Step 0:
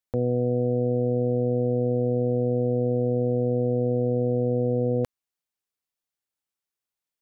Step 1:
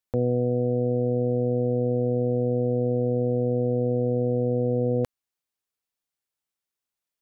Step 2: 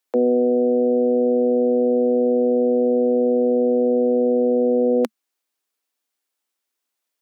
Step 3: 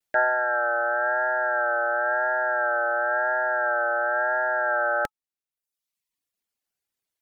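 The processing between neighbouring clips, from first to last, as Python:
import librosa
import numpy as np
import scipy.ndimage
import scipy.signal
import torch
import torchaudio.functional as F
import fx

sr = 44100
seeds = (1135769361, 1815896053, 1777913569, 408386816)

y1 = fx.rider(x, sr, range_db=10, speed_s=0.5)
y2 = scipy.signal.sosfilt(scipy.signal.butter(16, 220.0, 'highpass', fs=sr, output='sos'), y1)
y2 = y2 * 10.0 ** (7.5 / 20.0)
y3 = y2 * np.sin(2.0 * np.pi * 1100.0 * np.arange(len(y2)) / sr)
y3 = fx.vibrato(y3, sr, rate_hz=0.96, depth_cents=56.0)
y3 = fx.dereverb_blind(y3, sr, rt60_s=0.95)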